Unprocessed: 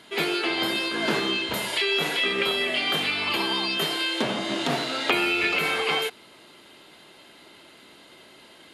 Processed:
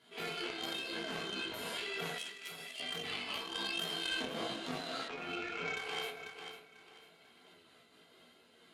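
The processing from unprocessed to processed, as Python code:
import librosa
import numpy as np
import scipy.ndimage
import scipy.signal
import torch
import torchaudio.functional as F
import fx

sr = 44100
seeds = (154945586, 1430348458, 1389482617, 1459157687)

p1 = fx.rev_fdn(x, sr, rt60_s=0.68, lf_ratio=0.95, hf_ratio=0.6, size_ms=13.0, drr_db=-1.5)
p2 = fx.chorus_voices(p1, sr, voices=2, hz=1.0, base_ms=15, depth_ms=4.3, mix_pct=50)
p3 = fx.air_absorb(p2, sr, metres=310.0, at=(5.08, 5.77))
p4 = fx.cheby_harmonics(p3, sr, harmonics=(3,), levels_db=(-13,), full_scale_db=-11.0)
p5 = fx.pre_emphasis(p4, sr, coefficient=0.9, at=(2.18, 2.8))
p6 = fx.echo_feedback(p5, sr, ms=494, feedback_pct=35, wet_db=-15.0)
p7 = fx.over_compress(p6, sr, threshold_db=-36.0, ratio=-1.0)
p8 = p6 + (p7 * 10.0 ** (2.0 / 20.0))
p9 = fx.am_noise(p8, sr, seeds[0], hz=5.7, depth_pct=65)
y = p9 * 10.0 ** (-8.5 / 20.0)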